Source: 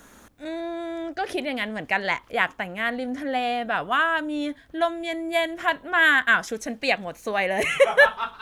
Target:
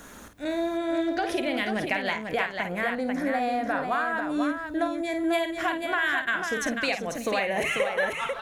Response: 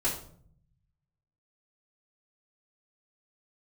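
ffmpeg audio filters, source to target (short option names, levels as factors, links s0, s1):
-filter_complex "[0:a]acompressor=threshold=0.0355:ratio=6,asettb=1/sr,asplit=3[s0][s1][s2];[s0]atrim=end=2.634[s3];[s1]atrim=start=2.63:end=5.15,asetpts=PTS-STARTPTS,afade=t=in:d=0.004:c=qsin,afade=t=out:st=2.516:d=0.004:c=qsin,equalizer=f=3000:t=o:w=0.4:g=-13.5[s4];[s2]atrim=start=5.146[s5];[s3][s4]acrossfade=d=0.004:c1=hsin:c2=qsin[s6];[s6][s5]acrossfade=d=0.004:c1=qsin:c2=hsin,aecho=1:1:51|374|493:0.398|0.112|0.531,volume=1.58"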